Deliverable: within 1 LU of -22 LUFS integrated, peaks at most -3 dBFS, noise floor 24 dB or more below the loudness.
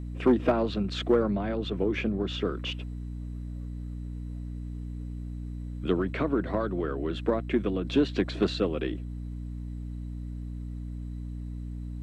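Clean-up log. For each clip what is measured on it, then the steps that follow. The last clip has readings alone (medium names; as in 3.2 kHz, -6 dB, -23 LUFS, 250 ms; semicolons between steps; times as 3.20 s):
hum 60 Hz; highest harmonic 300 Hz; hum level -34 dBFS; loudness -31.0 LUFS; peak level -13.0 dBFS; loudness target -22.0 LUFS
-> de-hum 60 Hz, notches 5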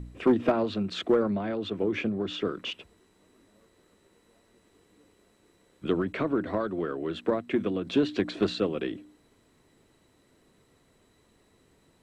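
hum not found; loudness -29.0 LUFS; peak level -13.0 dBFS; loudness target -22.0 LUFS
-> trim +7 dB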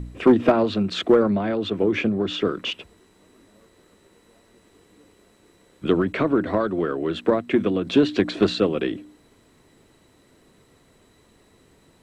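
loudness -22.0 LUFS; peak level -6.0 dBFS; noise floor -58 dBFS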